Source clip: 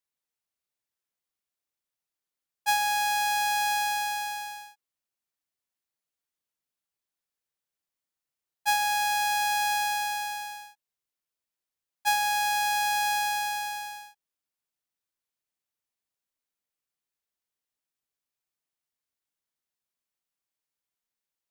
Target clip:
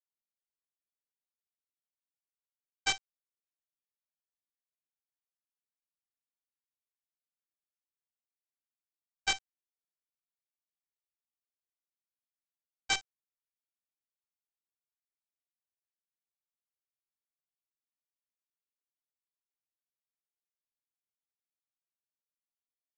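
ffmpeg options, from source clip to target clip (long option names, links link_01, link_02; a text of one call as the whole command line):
ffmpeg -i in.wav -filter_complex "[0:a]aeval=exprs='val(0)+0.5*0.0224*sgn(val(0))':channel_layout=same,lowpass=4700,aeval=exprs='0.158*(cos(1*acos(clip(val(0)/0.158,-1,1)))-cos(1*PI/2))+0.0631*(cos(3*acos(clip(val(0)/0.158,-1,1)))-cos(3*PI/2))+0.0141*(cos(5*acos(clip(val(0)/0.158,-1,1)))-cos(5*PI/2))+0.00708*(cos(7*acos(clip(val(0)/0.158,-1,1)))-cos(7*PI/2))+0.0282*(cos(8*acos(clip(val(0)/0.158,-1,1)))-cos(8*PI/2))':channel_layout=same,asetrate=41278,aresample=44100,aresample=16000,acrusher=bits=4:dc=4:mix=0:aa=0.000001,aresample=44100,asplit=2[link_01][link_02];[link_02]adelay=19,volume=-2dB[link_03];[link_01][link_03]amix=inputs=2:normalize=0,volume=-4.5dB" out.wav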